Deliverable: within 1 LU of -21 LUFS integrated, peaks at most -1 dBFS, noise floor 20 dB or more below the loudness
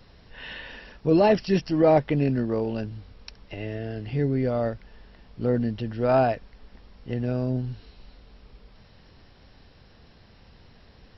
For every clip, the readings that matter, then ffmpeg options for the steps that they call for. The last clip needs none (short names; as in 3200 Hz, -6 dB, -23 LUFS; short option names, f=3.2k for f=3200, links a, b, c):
loudness -25.0 LUFS; peak -9.5 dBFS; loudness target -21.0 LUFS
-> -af "volume=4dB"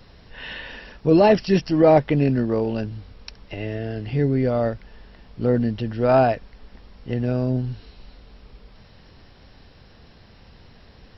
loudness -21.0 LUFS; peak -5.5 dBFS; noise floor -50 dBFS